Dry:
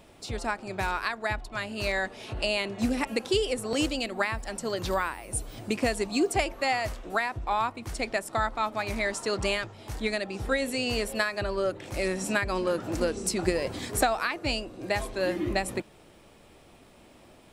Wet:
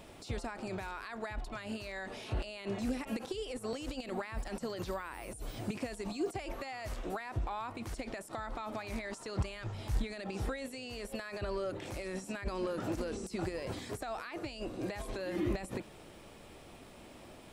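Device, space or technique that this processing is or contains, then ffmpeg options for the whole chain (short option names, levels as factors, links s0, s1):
de-esser from a sidechain: -filter_complex "[0:a]asettb=1/sr,asplit=3[s0][s1][s2];[s0]atrim=end=9.154[s3];[s1]atrim=start=9.15:end=10.04,asetpts=PTS-STARTPTS,afade=t=in:d=0.004:c=qsin,afade=t=out:st=0.886:d=0.004:c=qsin,asubboost=boost=8.5:cutoff=180[s4];[s2]atrim=start=10.036[s5];[s3][s4]acrossfade=d=0.004:c1=hsin:c2=qsin[s6];[s6][s5]acrossfade=d=0.004:c1=qsin:c2=hsin,asplit=2[s7][s8];[s8]highpass=f=5900:p=1,apad=whole_len=772846[s9];[s7][s9]sidechaincompress=threshold=0.00251:ratio=8:attack=1.7:release=30,volume=1.19"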